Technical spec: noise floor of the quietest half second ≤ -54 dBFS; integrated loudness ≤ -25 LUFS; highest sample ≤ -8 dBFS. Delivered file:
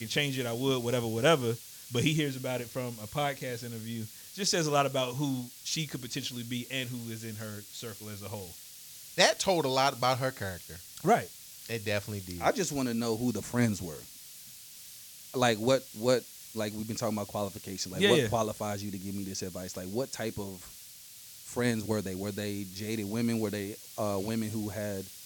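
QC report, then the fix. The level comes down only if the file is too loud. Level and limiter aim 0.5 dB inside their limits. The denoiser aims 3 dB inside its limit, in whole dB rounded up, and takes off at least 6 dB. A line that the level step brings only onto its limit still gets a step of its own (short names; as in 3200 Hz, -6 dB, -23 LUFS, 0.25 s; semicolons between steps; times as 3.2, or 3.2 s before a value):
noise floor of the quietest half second -50 dBFS: fail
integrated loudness -31.5 LUFS: OK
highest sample -6.5 dBFS: fail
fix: denoiser 7 dB, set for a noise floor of -50 dBFS; limiter -8.5 dBFS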